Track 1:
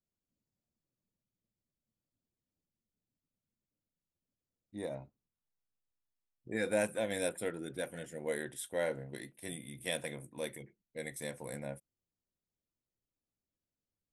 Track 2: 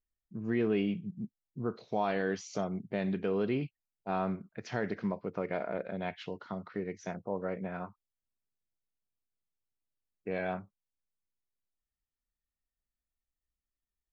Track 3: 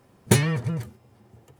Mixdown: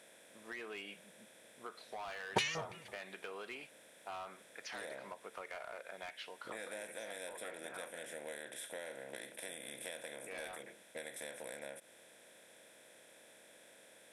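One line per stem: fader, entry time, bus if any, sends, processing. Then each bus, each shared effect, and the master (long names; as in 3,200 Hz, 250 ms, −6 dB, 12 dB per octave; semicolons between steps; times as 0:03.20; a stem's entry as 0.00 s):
−3.5 dB, 0.00 s, bus A, no send, compressor on every frequency bin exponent 0.4; high-pass filter 740 Hz 6 dB per octave
+2.0 dB, 0.00 s, bus A, no send, high-pass filter 1,000 Hz 12 dB per octave; hard clipping −36.5 dBFS, distortion −11 dB
−1.5 dB, 2.05 s, no bus, no send, auto-filter band-pass square 3 Hz 820–2,900 Hz
bus A: 0.0 dB, downward compressor, threshold −43 dBFS, peak gain reduction 12 dB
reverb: not used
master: no processing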